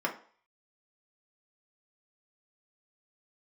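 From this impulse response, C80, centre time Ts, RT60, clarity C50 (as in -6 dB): 16.5 dB, 14 ms, 0.45 s, 11.5 dB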